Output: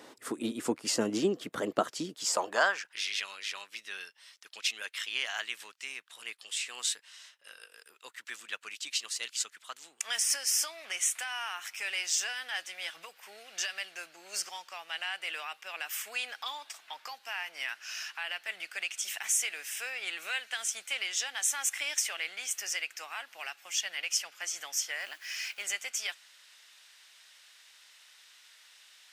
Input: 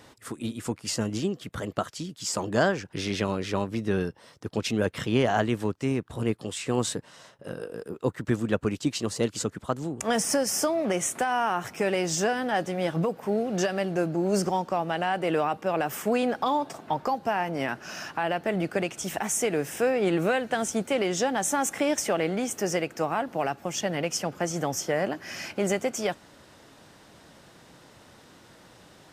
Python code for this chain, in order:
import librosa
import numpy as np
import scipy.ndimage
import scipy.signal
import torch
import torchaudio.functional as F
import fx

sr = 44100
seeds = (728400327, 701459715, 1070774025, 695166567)

y = fx.delta_hold(x, sr, step_db=-50.5, at=(25.0, 25.63))
y = fx.filter_sweep_highpass(y, sr, from_hz=300.0, to_hz=2400.0, start_s=2.04, end_s=3.03, q=1.2)